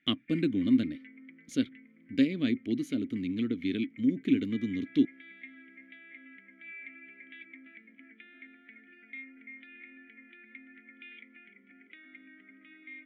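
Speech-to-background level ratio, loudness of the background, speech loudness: 20.0 dB, -50.5 LUFS, -30.5 LUFS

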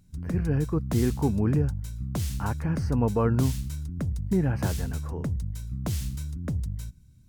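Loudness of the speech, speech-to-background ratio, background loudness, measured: -28.0 LUFS, 4.5 dB, -32.5 LUFS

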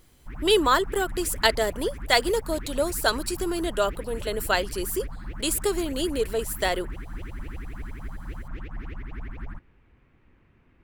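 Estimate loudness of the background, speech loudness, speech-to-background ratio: -39.5 LUFS, -25.5 LUFS, 14.0 dB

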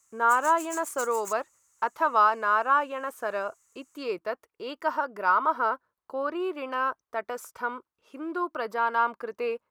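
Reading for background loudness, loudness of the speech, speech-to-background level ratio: -40.0 LUFS, -27.5 LUFS, 12.5 dB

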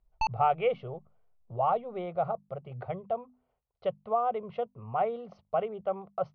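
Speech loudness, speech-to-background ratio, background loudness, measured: -32.5 LUFS, 2.0 dB, -34.5 LUFS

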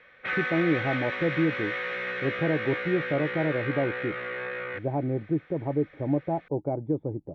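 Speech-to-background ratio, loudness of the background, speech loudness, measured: 2.0 dB, -31.5 LUFS, -29.5 LUFS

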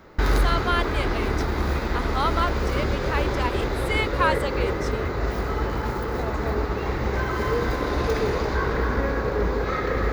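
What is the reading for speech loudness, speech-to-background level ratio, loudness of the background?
-28.5 LUFS, -3.0 dB, -25.5 LUFS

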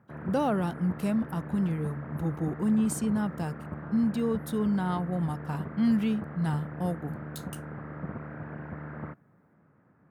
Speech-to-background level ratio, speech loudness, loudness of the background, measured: 10.5 dB, -29.5 LUFS, -40.0 LUFS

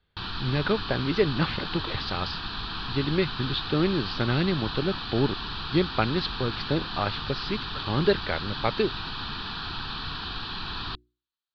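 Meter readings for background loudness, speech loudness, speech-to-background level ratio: -33.0 LUFS, -28.5 LUFS, 4.5 dB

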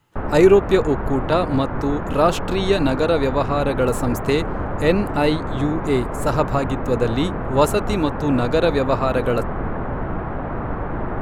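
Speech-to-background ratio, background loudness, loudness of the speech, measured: 6.5 dB, -27.0 LUFS, -20.5 LUFS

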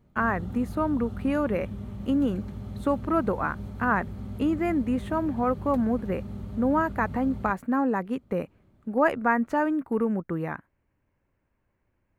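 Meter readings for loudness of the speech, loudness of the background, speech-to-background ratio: -27.0 LUFS, -38.0 LUFS, 11.0 dB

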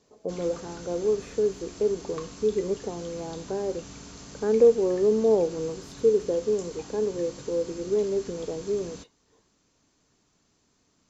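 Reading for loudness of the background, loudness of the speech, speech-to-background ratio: -43.5 LUFS, -27.0 LUFS, 16.5 dB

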